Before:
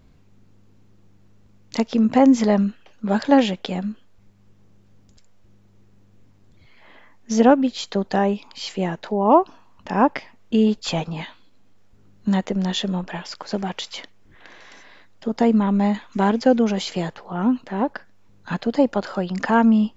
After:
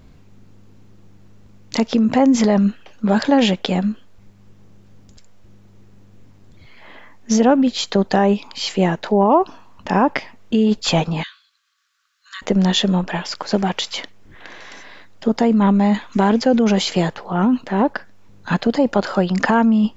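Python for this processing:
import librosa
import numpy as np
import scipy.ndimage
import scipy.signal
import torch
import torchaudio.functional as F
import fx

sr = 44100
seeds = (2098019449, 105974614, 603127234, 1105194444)

p1 = fx.over_compress(x, sr, threshold_db=-20.0, ratio=-0.5)
p2 = x + (p1 * 10.0 ** (0.5 / 20.0))
p3 = fx.cheby_ripple_highpass(p2, sr, hz=1100.0, ripple_db=6, at=(11.23, 12.42))
y = p3 * 10.0 ** (-1.0 / 20.0)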